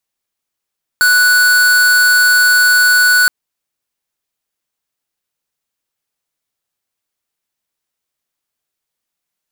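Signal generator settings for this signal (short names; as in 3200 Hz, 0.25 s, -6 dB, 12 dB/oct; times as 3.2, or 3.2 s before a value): tone square 1480 Hz -9.5 dBFS 2.27 s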